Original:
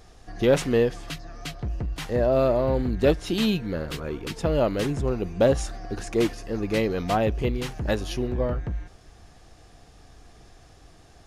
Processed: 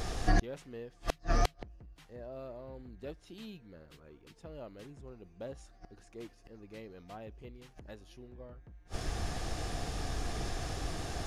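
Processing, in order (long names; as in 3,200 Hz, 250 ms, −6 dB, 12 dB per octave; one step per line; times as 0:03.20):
gate with flip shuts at −29 dBFS, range −38 dB
level +14 dB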